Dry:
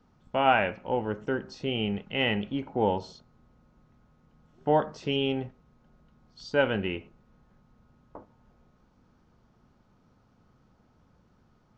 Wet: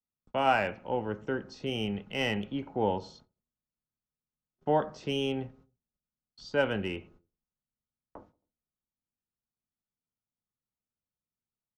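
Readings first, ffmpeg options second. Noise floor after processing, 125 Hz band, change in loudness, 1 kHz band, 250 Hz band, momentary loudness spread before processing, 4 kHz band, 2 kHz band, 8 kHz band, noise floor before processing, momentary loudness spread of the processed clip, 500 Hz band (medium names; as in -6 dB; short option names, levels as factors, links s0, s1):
under -85 dBFS, -3.0 dB, -3.0 dB, -3.0 dB, -3.0 dB, 10 LU, -4.0 dB, -3.5 dB, no reading, -65 dBFS, 10 LU, -3.0 dB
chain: -filter_complex "[0:a]agate=range=0.02:threshold=0.002:ratio=16:detection=peak,acrossover=split=190|500|2400[s0][s1][s2][s3];[s3]aeval=exprs='clip(val(0),-1,0.0178)':c=same[s4];[s0][s1][s2][s4]amix=inputs=4:normalize=0,asplit=2[s5][s6];[s6]adelay=90,lowpass=f=840:p=1,volume=0.075,asplit=2[s7][s8];[s8]adelay=90,lowpass=f=840:p=1,volume=0.47,asplit=2[s9][s10];[s10]adelay=90,lowpass=f=840:p=1,volume=0.47[s11];[s5][s7][s9][s11]amix=inputs=4:normalize=0,volume=0.708"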